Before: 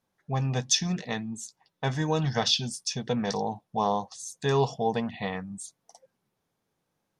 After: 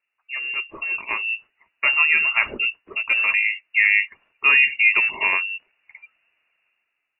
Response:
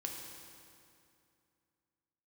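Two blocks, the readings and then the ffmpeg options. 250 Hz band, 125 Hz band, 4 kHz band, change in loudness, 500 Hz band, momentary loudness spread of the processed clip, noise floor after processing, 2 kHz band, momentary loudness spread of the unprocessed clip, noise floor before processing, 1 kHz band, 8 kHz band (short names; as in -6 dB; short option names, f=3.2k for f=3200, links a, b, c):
under -15 dB, under -25 dB, n/a, +10.0 dB, -12.0 dB, 13 LU, -78 dBFS, +22.5 dB, 13 LU, -80 dBFS, -1.5 dB, under -40 dB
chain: -af "dynaudnorm=f=210:g=9:m=15dB,aphaser=in_gain=1:out_gain=1:delay=3.6:decay=0.27:speed=1.5:type=sinusoidal,lowpass=f=2.5k:t=q:w=0.5098,lowpass=f=2.5k:t=q:w=0.6013,lowpass=f=2.5k:t=q:w=0.9,lowpass=f=2.5k:t=q:w=2.563,afreqshift=-2900,alimiter=level_in=2.5dB:limit=-1dB:release=50:level=0:latency=1,volume=-4dB"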